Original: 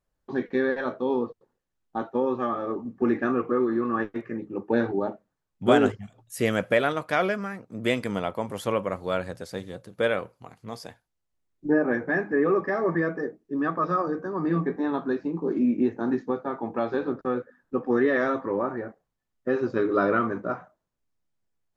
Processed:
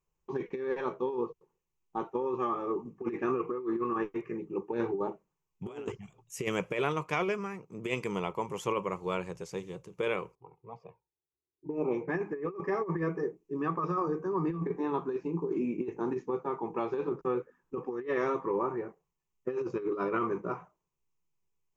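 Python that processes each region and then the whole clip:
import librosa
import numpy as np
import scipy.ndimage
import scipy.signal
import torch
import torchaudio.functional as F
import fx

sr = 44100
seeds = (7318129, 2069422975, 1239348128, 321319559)

y = fx.chain(x, sr, fx.env_lowpass(base_hz=570.0, full_db=-19.5),
    fx.env_flanger(rest_ms=2.7, full_db=-22.5),
    fx.cabinet(low_hz=100.0, low_slope=12, high_hz=9500.0, hz=(910.0, 1600.0, 2500.0, 4200.0), db=(5, -8, 7, 5)), at=(10.35, 12.08))
y = fx.ripple_eq(y, sr, per_octave=0.74, db=12)
y = fx.over_compress(y, sr, threshold_db=-23.0, ratio=-0.5)
y = y * 10.0 ** (-7.0 / 20.0)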